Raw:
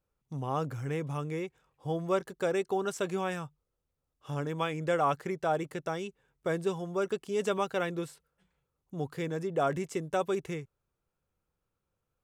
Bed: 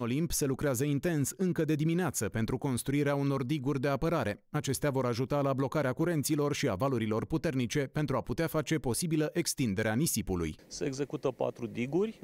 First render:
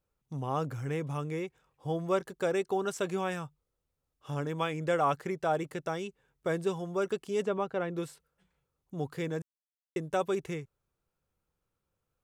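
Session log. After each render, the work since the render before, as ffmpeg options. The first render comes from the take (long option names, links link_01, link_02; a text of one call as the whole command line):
ffmpeg -i in.wav -filter_complex "[0:a]asplit=3[link_01][link_02][link_03];[link_01]afade=type=out:start_time=7.41:duration=0.02[link_04];[link_02]lowpass=frequency=1100:poles=1,afade=type=in:start_time=7.41:duration=0.02,afade=type=out:start_time=7.95:duration=0.02[link_05];[link_03]afade=type=in:start_time=7.95:duration=0.02[link_06];[link_04][link_05][link_06]amix=inputs=3:normalize=0,asplit=3[link_07][link_08][link_09];[link_07]atrim=end=9.42,asetpts=PTS-STARTPTS,afade=type=out:start_time=9.416:duration=0.004:curve=hsin[link_10];[link_08]atrim=start=9.42:end=9.96,asetpts=PTS-STARTPTS,volume=0[link_11];[link_09]atrim=start=9.96,asetpts=PTS-STARTPTS,afade=type=in:duration=0.004:curve=hsin[link_12];[link_10][link_11][link_12]concat=n=3:v=0:a=1" out.wav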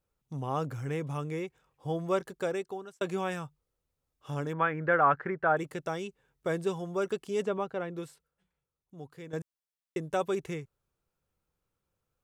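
ffmpeg -i in.wav -filter_complex "[0:a]asettb=1/sr,asplit=3[link_01][link_02][link_03];[link_01]atrim=end=4.534[link_04];[link_02]atrim=start=4.53:end=5.57,asetpts=PTS-STARTPTS,afade=type=in:duration=0.004:curve=qsin,afade=type=out:start_time=1.036:duration=0.004:curve=qsin,lowpass=frequency=1600:width_type=q:width=3.6[link_05];[link_03]atrim=start=5.566[link_06];[link_04][link_05]acrossfade=duration=0.004:curve1=hsin:curve2=qsin[link_07];[link_07][link_06]acrossfade=duration=0.004:curve1=qsin:curve2=hsin,asplit=3[link_08][link_09][link_10];[link_08]atrim=end=3.01,asetpts=PTS-STARTPTS,afade=type=out:start_time=2.34:duration=0.67[link_11];[link_09]atrim=start=3.01:end=9.33,asetpts=PTS-STARTPTS,afade=type=in:duration=0.004:curve=hsin,afade=type=out:start_time=4.48:duration=1.84:curve=qua:silence=0.281838[link_12];[link_10]atrim=start=9.33,asetpts=PTS-STARTPTS,afade=type=in:duration=0.004:curve=hsin:silence=0.281838[link_13];[link_11][link_12][link_13]concat=n=3:v=0:a=1" out.wav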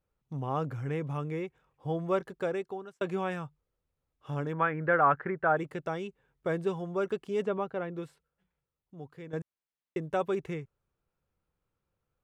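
ffmpeg -i in.wav -af "bass=frequency=250:gain=1,treble=frequency=4000:gain=-11" out.wav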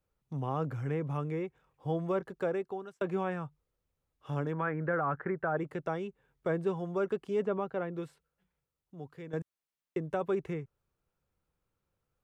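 ffmpeg -i in.wav -filter_complex "[0:a]acrossover=split=270|2000[link_01][link_02][link_03];[link_02]alimiter=limit=-24dB:level=0:latency=1:release=18[link_04];[link_03]acompressor=threshold=-56dB:ratio=6[link_05];[link_01][link_04][link_05]amix=inputs=3:normalize=0" out.wav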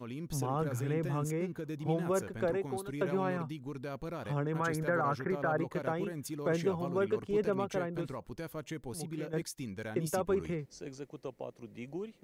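ffmpeg -i in.wav -i bed.wav -filter_complex "[1:a]volume=-10.5dB[link_01];[0:a][link_01]amix=inputs=2:normalize=0" out.wav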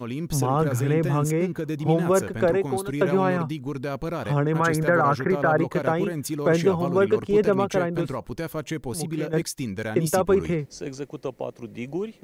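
ffmpeg -i in.wav -af "volume=11dB" out.wav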